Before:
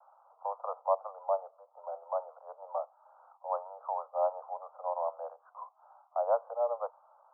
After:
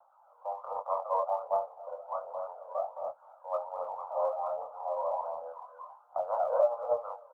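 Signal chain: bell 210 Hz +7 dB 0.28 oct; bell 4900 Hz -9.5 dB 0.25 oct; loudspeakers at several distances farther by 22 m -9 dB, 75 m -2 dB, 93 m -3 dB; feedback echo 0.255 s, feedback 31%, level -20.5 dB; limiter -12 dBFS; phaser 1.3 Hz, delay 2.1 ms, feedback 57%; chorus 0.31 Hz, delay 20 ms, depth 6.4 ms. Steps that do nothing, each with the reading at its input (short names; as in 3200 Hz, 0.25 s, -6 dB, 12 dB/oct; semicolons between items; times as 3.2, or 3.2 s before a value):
bell 210 Hz: input band starts at 430 Hz; bell 4900 Hz: input band ends at 1400 Hz; limiter -12 dBFS: input peak -16.0 dBFS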